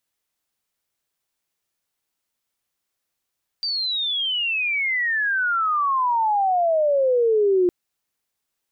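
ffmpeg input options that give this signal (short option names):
-f lavfi -i "aevalsrc='pow(10,(-22+7.5*t/4.06)/20)*sin(2*PI*4700*4.06/log(350/4700)*(exp(log(350/4700)*t/4.06)-1))':d=4.06:s=44100"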